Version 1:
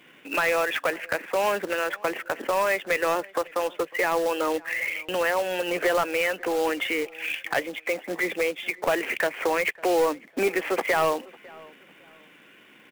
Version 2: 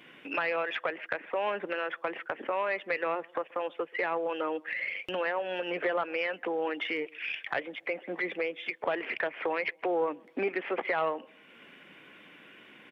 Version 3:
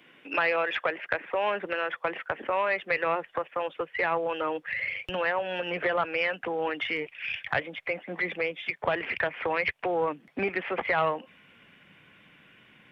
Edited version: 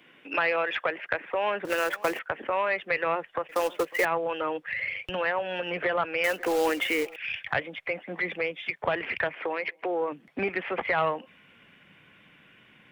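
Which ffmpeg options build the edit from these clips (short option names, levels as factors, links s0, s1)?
-filter_complex "[0:a]asplit=3[s0][s1][s2];[2:a]asplit=5[s3][s4][s5][s6][s7];[s3]atrim=end=1.652[s8];[s0]atrim=start=1.648:end=2.192[s9];[s4]atrim=start=2.188:end=3.492[s10];[s1]atrim=start=3.488:end=4.052[s11];[s5]atrim=start=4.048:end=6.242[s12];[s2]atrim=start=6.238:end=7.162[s13];[s6]atrim=start=7.158:end=9.352[s14];[1:a]atrim=start=9.348:end=10.122[s15];[s7]atrim=start=10.118[s16];[s8][s9]acrossfade=d=0.004:c1=hsin:c2=hsin[s17];[s17][s10]acrossfade=d=0.004:c1=hsin:c2=hsin[s18];[s18][s11]acrossfade=d=0.004:c1=hsin:c2=hsin[s19];[s19][s12]acrossfade=d=0.004:c1=hsin:c2=hsin[s20];[s20][s13]acrossfade=d=0.004:c1=hsin:c2=hsin[s21];[s21][s14]acrossfade=d=0.004:c1=hsin:c2=hsin[s22];[s22][s15]acrossfade=d=0.004:c1=hsin:c2=hsin[s23];[s23][s16]acrossfade=d=0.004:c1=hsin:c2=hsin"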